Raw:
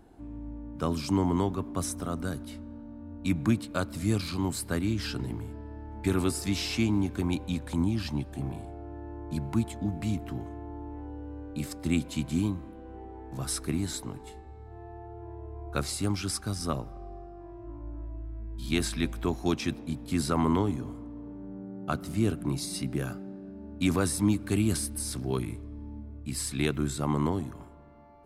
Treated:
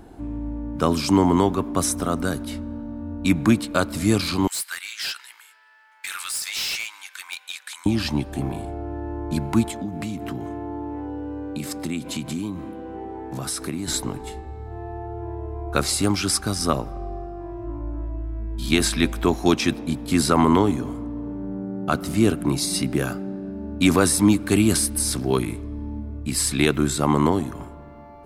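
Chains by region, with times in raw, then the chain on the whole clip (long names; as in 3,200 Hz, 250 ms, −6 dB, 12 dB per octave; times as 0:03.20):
0:04.47–0:07.86: high-pass filter 1,500 Hz 24 dB per octave + hard clipping −35 dBFS
0:09.70–0:13.88: high-pass filter 120 Hz + downward compressor 3 to 1, threshold −37 dBFS
whole clip: dynamic equaliser 100 Hz, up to −7 dB, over −42 dBFS, Q 0.72; boost into a limiter +15.5 dB; level −4.5 dB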